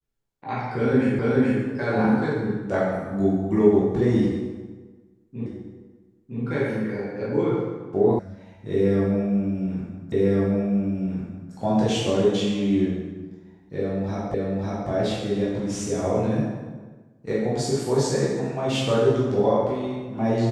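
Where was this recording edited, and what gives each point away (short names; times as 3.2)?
1.19 repeat of the last 0.43 s
5.46 repeat of the last 0.96 s
8.19 sound cut off
10.12 repeat of the last 1.4 s
14.34 repeat of the last 0.55 s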